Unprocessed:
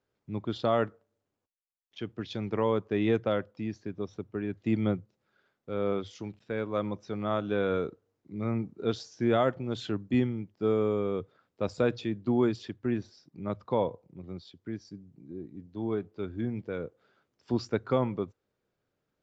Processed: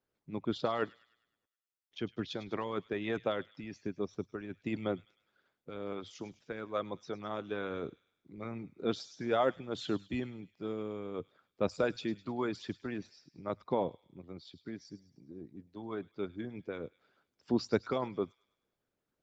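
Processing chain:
harmonic and percussive parts rebalanced harmonic −14 dB
delay with a high-pass on its return 103 ms, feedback 49%, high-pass 3,000 Hz, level −12.5 dB

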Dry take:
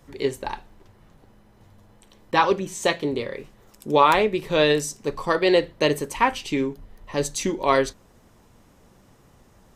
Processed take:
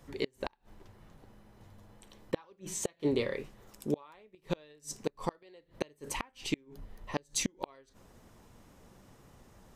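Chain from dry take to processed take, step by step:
gate with flip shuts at −15 dBFS, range −35 dB
level −3 dB

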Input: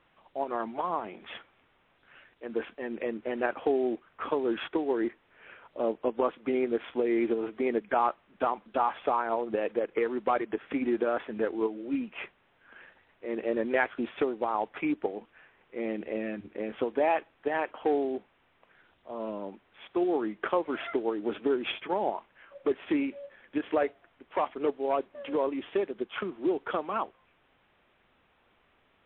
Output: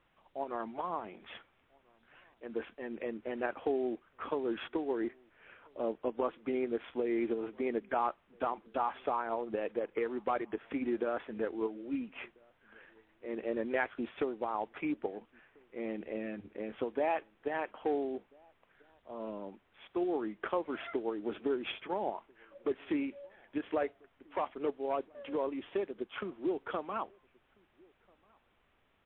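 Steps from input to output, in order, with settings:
low-shelf EQ 100 Hz +6.5 dB
slap from a distant wall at 230 metres, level −29 dB
level −6 dB

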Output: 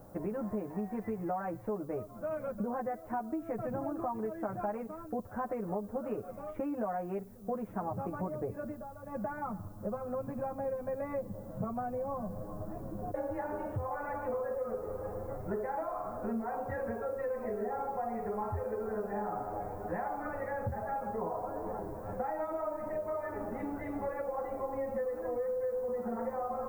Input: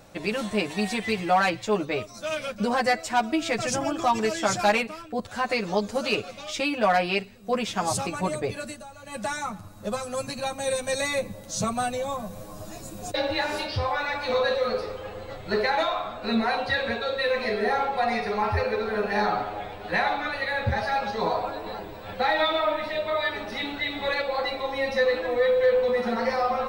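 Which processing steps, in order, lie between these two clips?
Bessel low-pass filter 880 Hz, order 6
downward compressor, threshold −33 dBFS, peak gain reduction 14 dB
background noise violet −66 dBFS

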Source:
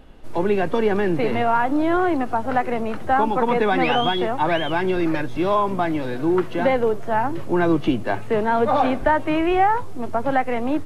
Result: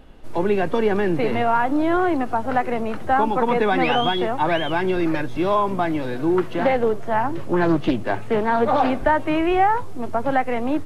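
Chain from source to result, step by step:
0:06.54–0:08.90: highs frequency-modulated by the lows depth 0.36 ms

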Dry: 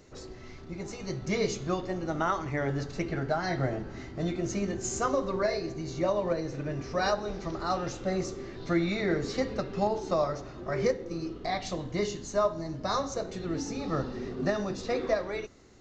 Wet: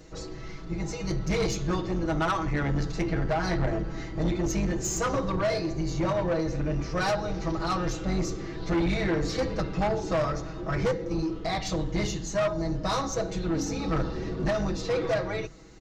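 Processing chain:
sub-octave generator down 2 octaves, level +2 dB
comb filter 6.2 ms, depth 95%
soft clipping −24 dBFS, distortion −10 dB
level +2.5 dB

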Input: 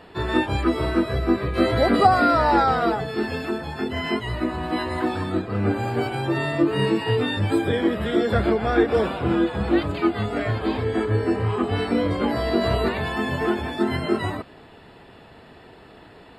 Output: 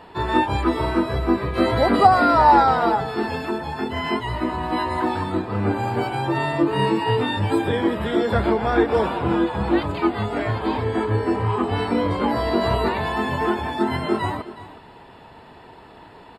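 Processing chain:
parametric band 930 Hz +10 dB 0.34 octaves
on a send: single-tap delay 365 ms −16 dB

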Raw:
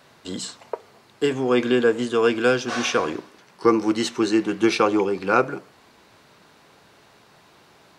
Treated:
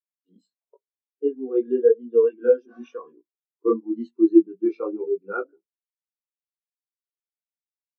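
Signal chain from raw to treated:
multi-voice chorus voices 2, 0.94 Hz, delay 20 ms, depth 3 ms
elliptic high-pass filter 160 Hz
every bin expanded away from the loudest bin 2.5 to 1
level +5 dB

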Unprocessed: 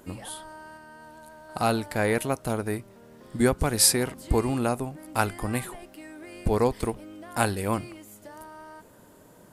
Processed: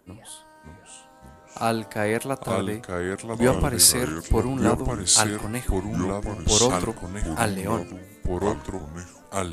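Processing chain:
delay with pitch and tempo change per echo 560 ms, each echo −3 semitones, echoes 2
multiband upward and downward expander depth 40%

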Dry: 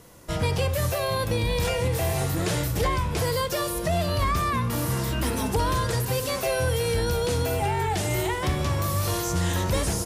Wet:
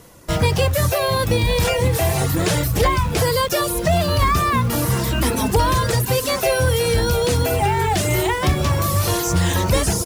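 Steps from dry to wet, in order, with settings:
reverb reduction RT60 0.58 s
in parallel at −7 dB: bit reduction 6 bits
on the sum: level +5 dB

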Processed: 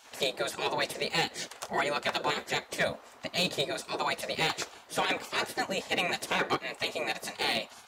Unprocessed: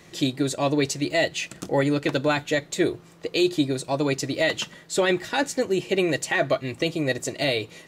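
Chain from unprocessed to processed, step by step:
gate on every frequency bin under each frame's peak −15 dB weak
high-pass filter 490 Hz 6 dB per octave
tilt shelving filter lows +7 dB, about 1,100 Hz
hard clipping −28 dBFS, distortion −18 dB
level +7 dB

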